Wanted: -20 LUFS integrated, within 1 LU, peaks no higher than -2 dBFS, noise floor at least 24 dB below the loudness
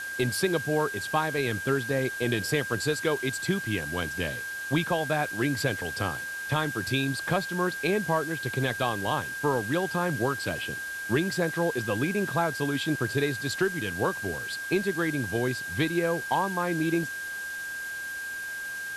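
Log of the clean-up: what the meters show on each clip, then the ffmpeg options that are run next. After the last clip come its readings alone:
steady tone 1.6 kHz; tone level -33 dBFS; noise floor -36 dBFS; noise floor target -53 dBFS; loudness -28.5 LUFS; peak level -12.5 dBFS; loudness target -20.0 LUFS
-> -af "bandreject=f=1600:w=30"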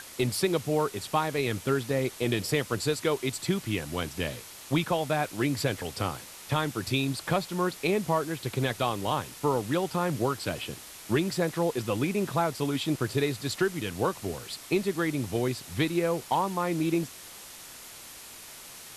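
steady tone not found; noise floor -46 dBFS; noise floor target -53 dBFS
-> -af "afftdn=nr=7:nf=-46"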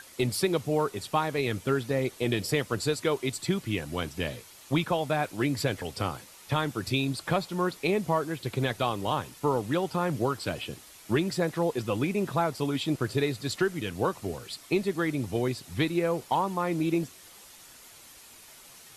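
noise floor -51 dBFS; noise floor target -54 dBFS
-> -af "afftdn=nr=6:nf=-51"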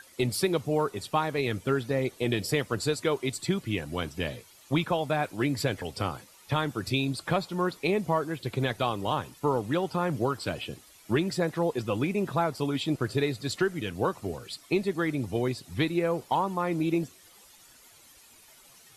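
noise floor -56 dBFS; loudness -29.5 LUFS; peak level -13.0 dBFS; loudness target -20.0 LUFS
-> -af "volume=2.99"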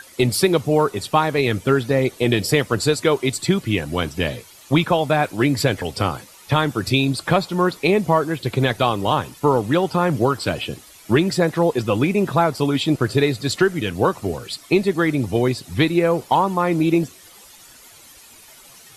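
loudness -20.0 LUFS; peak level -3.5 dBFS; noise floor -46 dBFS

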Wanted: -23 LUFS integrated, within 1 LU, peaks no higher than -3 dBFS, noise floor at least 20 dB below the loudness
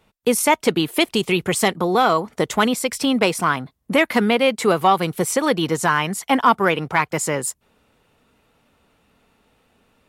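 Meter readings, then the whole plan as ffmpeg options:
loudness -19.5 LUFS; peak level -3.5 dBFS; loudness target -23.0 LUFS
-> -af "volume=0.668"

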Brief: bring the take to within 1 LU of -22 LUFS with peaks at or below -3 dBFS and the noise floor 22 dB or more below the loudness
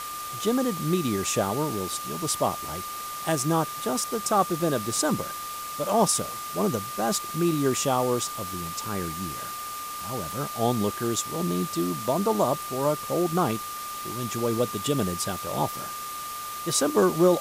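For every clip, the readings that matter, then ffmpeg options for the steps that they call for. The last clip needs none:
steady tone 1.2 kHz; tone level -34 dBFS; noise floor -35 dBFS; noise floor target -49 dBFS; loudness -27.0 LUFS; peak level -10.0 dBFS; loudness target -22.0 LUFS
-> -af "bandreject=f=1200:w=30"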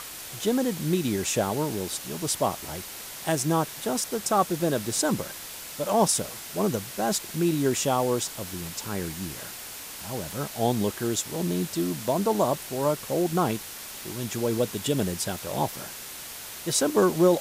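steady tone not found; noise floor -40 dBFS; noise floor target -50 dBFS
-> -af "afftdn=nr=10:nf=-40"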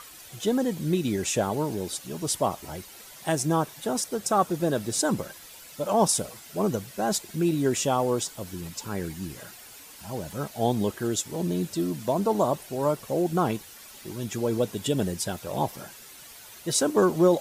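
noise floor -47 dBFS; noise floor target -49 dBFS
-> -af "afftdn=nr=6:nf=-47"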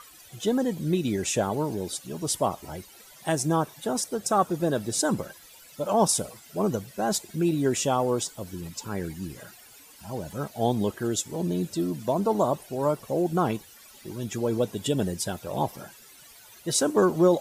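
noise floor -51 dBFS; loudness -27.0 LUFS; peak level -10.5 dBFS; loudness target -22.0 LUFS
-> -af "volume=1.78"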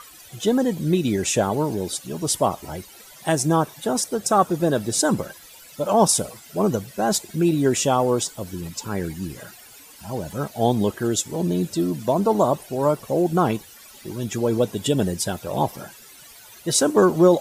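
loudness -22.0 LUFS; peak level -5.5 dBFS; noise floor -46 dBFS

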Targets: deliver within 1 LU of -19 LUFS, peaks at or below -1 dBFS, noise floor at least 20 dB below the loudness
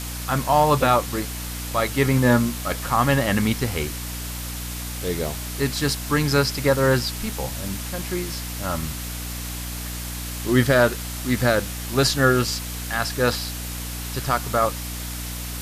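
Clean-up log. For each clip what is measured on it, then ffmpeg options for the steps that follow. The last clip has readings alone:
hum 60 Hz; highest harmonic 300 Hz; hum level -30 dBFS; noise floor -31 dBFS; noise floor target -43 dBFS; loudness -23.0 LUFS; peak level -5.5 dBFS; loudness target -19.0 LUFS
-> -af "bandreject=f=60:t=h:w=4,bandreject=f=120:t=h:w=4,bandreject=f=180:t=h:w=4,bandreject=f=240:t=h:w=4,bandreject=f=300:t=h:w=4"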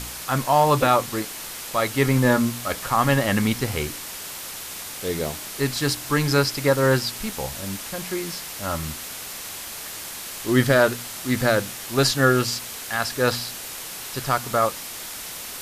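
hum not found; noise floor -35 dBFS; noise floor target -44 dBFS
-> -af "afftdn=nr=9:nf=-35"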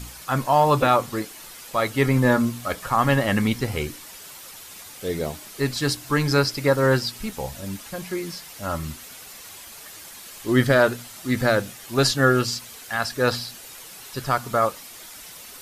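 noise floor -42 dBFS; noise floor target -43 dBFS
-> -af "afftdn=nr=6:nf=-42"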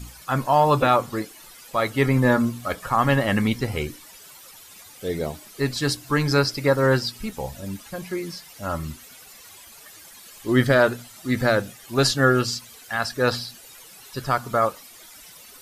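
noise floor -46 dBFS; loudness -23.0 LUFS; peak level -5.5 dBFS; loudness target -19.0 LUFS
-> -af "volume=1.58"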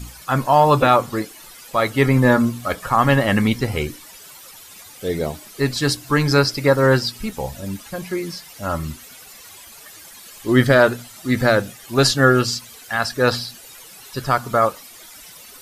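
loudness -19.0 LUFS; peak level -1.5 dBFS; noise floor -42 dBFS

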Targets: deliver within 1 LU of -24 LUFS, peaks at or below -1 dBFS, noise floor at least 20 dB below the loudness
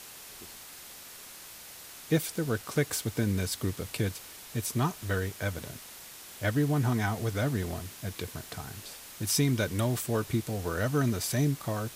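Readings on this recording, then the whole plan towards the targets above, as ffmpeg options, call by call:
noise floor -47 dBFS; noise floor target -51 dBFS; loudness -31.0 LUFS; peak level -14.0 dBFS; loudness target -24.0 LUFS
-> -af "afftdn=nr=6:nf=-47"
-af "volume=2.24"

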